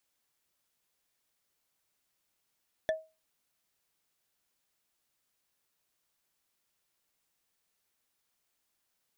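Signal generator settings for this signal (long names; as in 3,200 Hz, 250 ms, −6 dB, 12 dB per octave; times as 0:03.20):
struck wood, lowest mode 636 Hz, decay 0.28 s, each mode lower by 6.5 dB, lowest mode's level −23 dB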